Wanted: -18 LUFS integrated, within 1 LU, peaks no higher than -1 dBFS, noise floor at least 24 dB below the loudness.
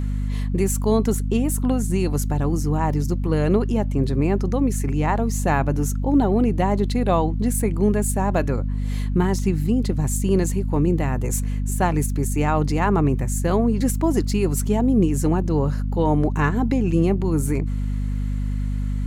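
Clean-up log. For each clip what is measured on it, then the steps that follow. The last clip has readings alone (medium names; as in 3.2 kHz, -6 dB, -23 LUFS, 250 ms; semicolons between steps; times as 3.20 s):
hum 50 Hz; highest harmonic 250 Hz; hum level -21 dBFS; loudness -21.5 LUFS; peak level -5.5 dBFS; loudness target -18.0 LUFS
-> de-hum 50 Hz, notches 5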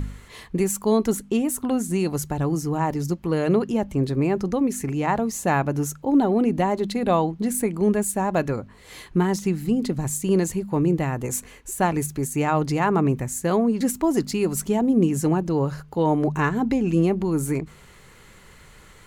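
hum not found; loudness -23.0 LUFS; peak level -7.5 dBFS; loudness target -18.0 LUFS
-> trim +5 dB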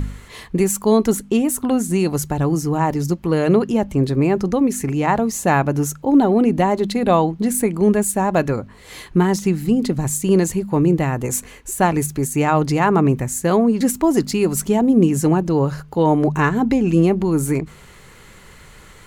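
loudness -18.0 LUFS; peak level -2.5 dBFS; noise floor -44 dBFS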